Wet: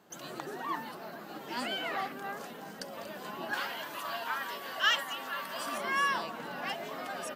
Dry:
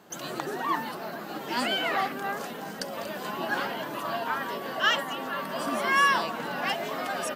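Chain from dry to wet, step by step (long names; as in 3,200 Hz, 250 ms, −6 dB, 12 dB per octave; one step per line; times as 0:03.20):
0:03.53–0:05.78: tilt shelving filter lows −7 dB, about 770 Hz
level −7.5 dB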